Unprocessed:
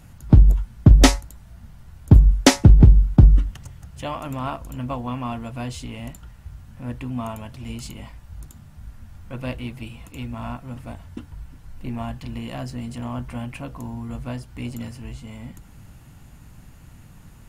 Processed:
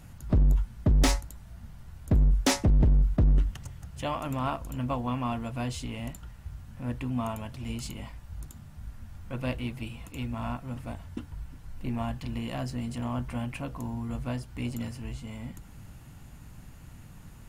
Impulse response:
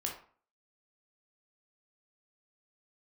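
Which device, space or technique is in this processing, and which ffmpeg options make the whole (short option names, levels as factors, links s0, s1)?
limiter into clipper: -af "alimiter=limit=0.316:level=0:latency=1:release=23,asoftclip=type=hard:threshold=0.158,volume=0.794"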